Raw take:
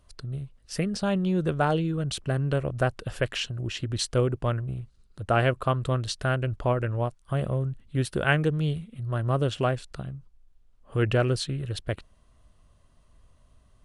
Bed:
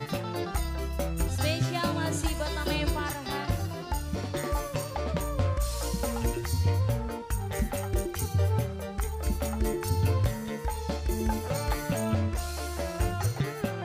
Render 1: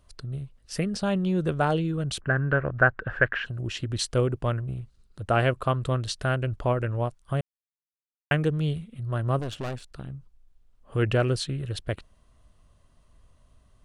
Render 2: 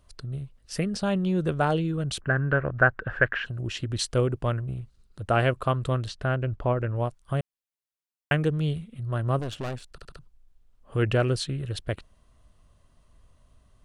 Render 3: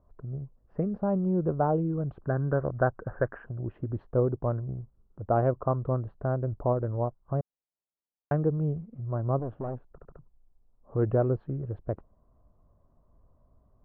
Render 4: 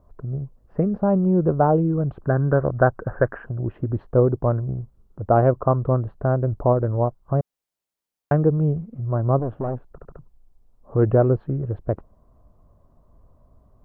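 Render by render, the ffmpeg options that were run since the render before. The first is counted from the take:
-filter_complex "[0:a]asplit=3[s0][s1][s2];[s0]afade=t=out:st=2.2:d=0.02[s3];[s1]lowpass=f=1600:t=q:w=5.3,afade=t=in:st=2.2:d=0.02,afade=t=out:st=3.45:d=0.02[s4];[s2]afade=t=in:st=3.45:d=0.02[s5];[s3][s4][s5]amix=inputs=3:normalize=0,asettb=1/sr,asplit=3[s6][s7][s8];[s6]atrim=end=9.394[s9];[s7]atrim=start=9.39:end=10.1,asetpts=PTS-STARTPTS,afade=t=in:d=0.004:c=qsin,afade=t=out:st=0.706:d=0.004:c=qsin,aeval=exprs='(tanh(28.2*val(0)+0.6)-tanh(0.6))/28.2':c=same[s10];[s8]atrim=start=10.096[s11];[s9][s10]acrossfade=d=0.004:c1=hsin:c2=qsin[s12];[s12][s11]acrossfade=d=0.004:c1=qsin:c2=hsin,asplit=3[s13][s14][s15];[s13]atrim=end=7.41,asetpts=PTS-STARTPTS,afade=t=out:st=7.406:d=0.004:c=hsin[s16];[s14]atrim=start=7.41:end=8.31,asetpts=PTS-STARTPTS,volume=0[s17];[s15]atrim=start=8.31,asetpts=PTS-STARTPTS,afade=t=in:d=0.004:c=hsin[s18];[s16][s17][s18]concat=n=3:v=0:a=1"
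-filter_complex "[0:a]asettb=1/sr,asplit=3[s0][s1][s2];[s0]atrim=end=6.084[s3];[s1]atrim=start=6.08:end=6.96,asetpts=PTS-STARTPTS,afade=t=in:d=0.004:c=qsin,afade=t=out:st=0.876:d=0.004:c=qsin,aemphasis=mode=reproduction:type=75kf[s4];[s2]atrim=start=6.956[s5];[s3][s4]acrossfade=d=0.004:c1=hsin:c2=qsin[s6];[s6][s5]acrossfade=d=0.004:c1=qsin:c2=hsin,asplit=5[s7][s8][s9][s10][s11];[s7]atrim=end=9.982[s12];[s8]atrim=start=9.908:end=9.982[s13];[s9]atrim=start=9.908:end=9.982[s14];[s10]atrim=start=9.908:end=9.982[s15];[s11]atrim=start=10.188[s16];[s12][s13]acrossfade=d=0.004:c1=hsin:c2=hsin[s17];[s17][s14]acrossfade=d=0.004:c1=hsin:c2=hsin[s18];[s18][s15]acrossfade=d=0.004:c1=hsin:c2=hsin[s19];[s19][s16]acrossfade=d=0.004:c1=hsin:c2=hsin"
-af "lowpass=f=1000:w=0.5412,lowpass=f=1000:w=1.3066,lowshelf=f=130:g=-5"
-af "volume=2.51"

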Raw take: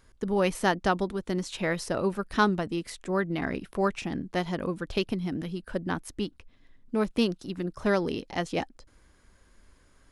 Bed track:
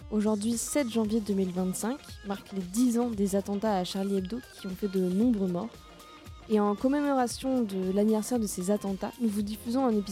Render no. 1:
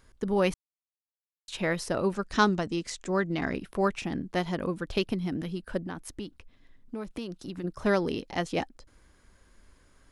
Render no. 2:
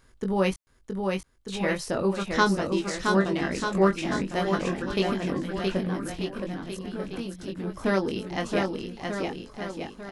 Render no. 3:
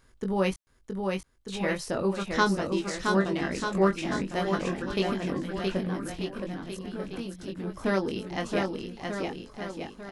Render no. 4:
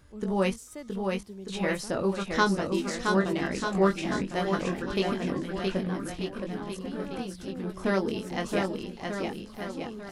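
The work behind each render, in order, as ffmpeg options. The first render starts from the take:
-filter_complex "[0:a]asettb=1/sr,asplit=3[s0][s1][s2];[s0]atrim=end=2.144[s3];[s1]atrim=start=2.14:end=3.53,asetpts=PTS-STARTPTS,afade=t=in:d=0.004:c=qsin,afade=t=out:st=1.386:d=0.004:c=qsin,lowpass=f=6900:t=q:w=2.4[s4];[s2]atrim=start=3.526[s5];[s3][s4]acrossfade=d=0.004:c1=hsin:c2=qsin[s6];[s6][s5]acrossfade=d=0.004:c1=qsin:c2=hsin,asettb=1/sr,asplit=3[s7][s8][s9];[s7]atrim=end=5.834[s10];[s8]atrim=start=5.83:end=7.64,asetpts=PTS-STARTPTS,afade=t=in:d=0.004:c=qsin,afade=t=out:st=1.806:d=0.004:c=qsin,acompressor=threshold=0.0251:ratio=6:attack=3.2:release=140:knee=1:detection=peak[s11];[s9]atrim=start=7.636[s12];[s10][s11]acrossfade=d=0.004:c1=hsin:c2=qsin[s13];[s13][s12]acrossfade=d=0.004:c1=qsin:c2=hsin,asplit=3[s14][s15][s16];[s14]atrim=end=0.54,asetpts=PTS-STARTPTS,afade=t=out:st=0.536:d=0.004:c=hsin[s17];[s15]atrim=start=0.54:end=1.48,asetpts=PTS-STARTPTS,volume=0[s18];[s16]atrim=start=1.48,asetpts=PTS-STARTPTS,afade=t=in:d=0.004:c=hsin[s19];[s17][s18][s19]concat=n=3:v=0:a=1"
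-filter_complex "[0:a]asplit=2[s0][s1];[s1]adelay=21,volume=0.562[s2];[s0][s2]amix=inputs=2:normalize=0,aecho=1:1:670|1240|1724|2135|2485:0.631|0.398|0.251|0.158|0.1"
-af "volume=0.794"
-filter_complex "[1:a]volume=0.188[s0];[0:a][s0]amix=inputs=2:normalize=0"

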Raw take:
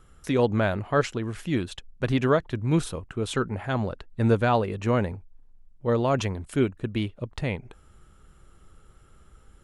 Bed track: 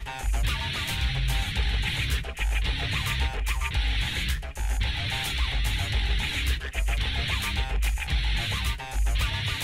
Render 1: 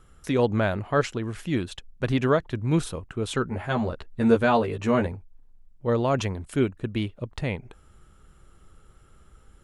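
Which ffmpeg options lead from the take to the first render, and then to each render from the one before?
-filter_complex "[0:a]asettb=1/sr,asplit=3[s0][s1][s2];[s0]atrim=end=3.474[s3];[s1]atrim=start=3.47:end=5.07,asetpts=PTS-STARTPTS,afade=t=in:d=0.004:c=qsin,afade=t=out:st=1.596:d=0.004:c=qsin,asplit=2[s4][s5];[s5]adelay=13,volume=0.708[s6];[s4][s6]amix=inputs=2:normalize=0,atrim=end_sample=70560[s7];[s2]atrim=start=5.066[s8];[s3][s7]acrossfade=d=0.004:c1=hsin:c2=qsin[s9];[s9][s8]acrossfade=d=0.004:c1=qsin:c2=hsin"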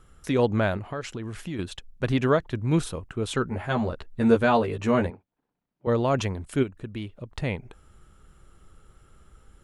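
-filter_complex "[0:a]asettb=1/sr,asplit=3[s0][s1][s2];[s0]atrim=end=0.774[s3];[s1]atrim=start=0.77:end=1.59,asetpts=PTS-STARTPTS,afade=t=in:d=0.004:c=qsin,afade=t=out:st=0.816:d=0.004:c=qsin,acompressor=threshold=0.0355:ratio=5:attack=3.2:release=140:knee=1:detection=peak[s4];[s2]atrim=start=1.586[s5];[s3][s4]acrossfade=d=0.004:c1=hsin:c2=qsin[s6];[s6][s5]acrossfade=d=0.004:c1=qsin:c2=hsin,asettb=1/sr,asplit=3[s7][s8][s9];[s7]atrim=end=5.104[s10];[s8]atrim=start=5.1:end=5.87,asetpts=PTS-STARTPTS,afade=t=in:d=0.004:c=qsin,afade=t=out:st=0.766:d=0.004:c=qsin,highpass=250,lowpass=3200[s11];[s9]atrim=start=5.866[s12];[s10][s11]acrossfade=d=0.004:c1=hsin:c2=qsin[s13];[s13][s12]acrossfade=d=0.004:c1=qsin:c2=hsin,asplit=3[s14][s15][s16];[s14]afade=t=out:st=6.62:d=0.02[s17];[s15]acompressor=threshold=0.00891:ratio=1.5:attack=3.2:release=140:knee=1:detection=peak,afade=t=in:st=6.62:d=0.02,afade=t=out:st=7.32:d=0.02[s18];[s16]afade=t=in:st=7.32:d=0.02[s19];[s17][s18][s19]amix=inputs=3:normalize=0"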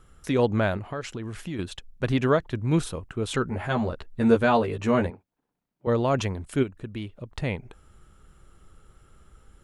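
-filter_complex "[0:a]asettb=1/sr,asplit=3[s0][s1][s2];[s0]atrim=end=3.344[s3];[s1]atrim=start=3.34:end=3.83,asetpts=PTS-STARTPTS,afade=t=in:d=0.004:c=qsin,afade=t=out:st=0.486:d=0.004:c=qsin,acompressor=mode=upward:threshold=0.0501:ratio=2.5:attack=3.2:release=140:knee=2.83:detection=peak[s4];[s2]atrim=start=3.826[s5];[s3][s4]acrossfade=d=0.004:c1=hsin:c2=qsin[s6];[s6][s5]acrossfade=d=0.004:c1=qsin:c2=hsin"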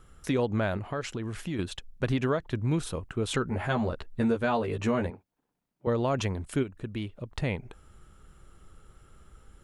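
-af "acompressor=threshold=0.0708:ratio=6"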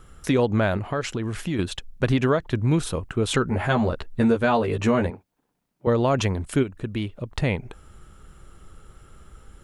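-af "volume=2.11"

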